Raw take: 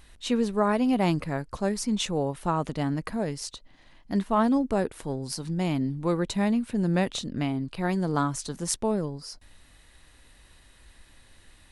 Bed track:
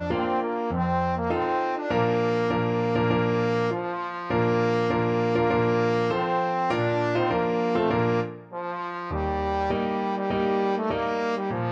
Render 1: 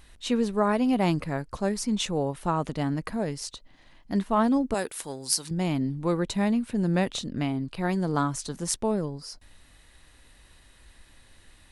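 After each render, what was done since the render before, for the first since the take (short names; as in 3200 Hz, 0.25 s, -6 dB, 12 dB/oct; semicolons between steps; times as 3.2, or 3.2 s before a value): 4.74–5.51 tilt +3.5 dB/oct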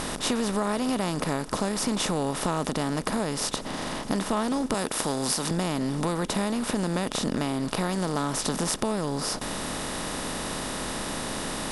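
per-bin compression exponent 0.4; compressor, threshold -23 dBFS, peak gain reduction 8.5 dB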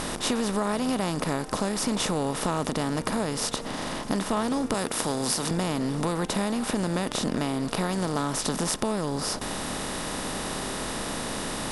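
add bed track -20 dB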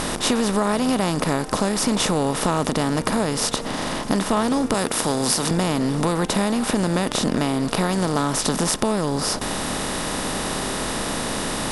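gain +6 dB; limiter -2 dBFS, peak gain reduction 2 dB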